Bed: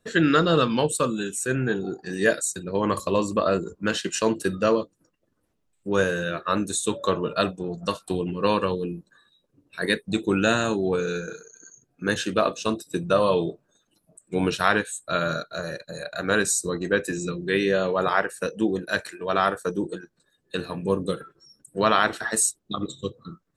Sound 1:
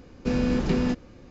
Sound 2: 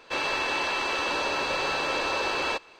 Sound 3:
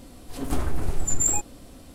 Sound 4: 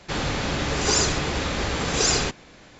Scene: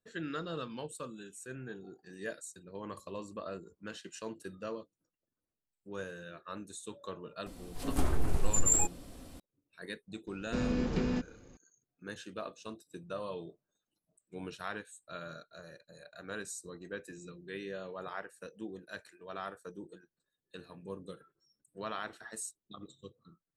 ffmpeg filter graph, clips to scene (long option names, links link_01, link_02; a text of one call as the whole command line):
ffmpeg -i bed.wav -i cue0.wav -i cue1.wav -i cue2.wav -filter_complex "[0:a]volume=-19.5dB[link_01];[3:a]aresample=32000,aresample=44100,atrim=end=1.94,asetpts=PTS-STARTPTS,volume=-4dB,afade=type=in:duration=0.004:curve=hsin,afade=type=out:start_time=1.936:duration=0.004:curve=hsin,adelay=328986S[link_02];[1:a]atrim=end=1.3,asetpts=PTS-STARTPTS,volume=-8dB,afade=type=in:duration=0.004:curve=hsin,afade=type=out:start_time=1.296:duration=0.004:curve=hsin,adelay=10270[link_03];[link_01][link_02][link_03]amix=inputs=3:normalize=0" out.wav